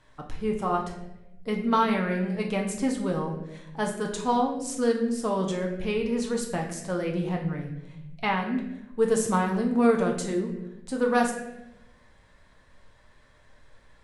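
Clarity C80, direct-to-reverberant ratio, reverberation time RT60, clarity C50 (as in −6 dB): 9.0 dB, 0.5 dB, 0.95 s, 6.5 dB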